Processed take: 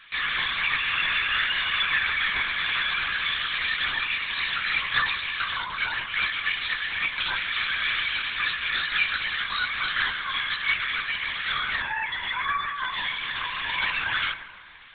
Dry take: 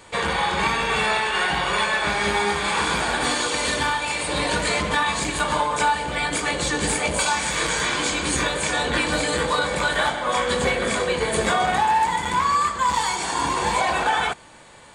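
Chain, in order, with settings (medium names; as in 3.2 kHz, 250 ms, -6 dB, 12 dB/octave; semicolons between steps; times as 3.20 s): spectral gate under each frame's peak -30 dB strong; high-pass 1.5 kHz 24 dB/octave; in parallel at +1.5 dB: saturation -27 dBFS, distortion -10 dB; on the sum: flange 1 Hz, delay 3.3 ms, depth 2 ms, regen +34%; on a send at -11 dB: reverberation RT60 2.7 s, pre-delay 10 ms; on the sum: LPC vocoder at 8 kHz whisper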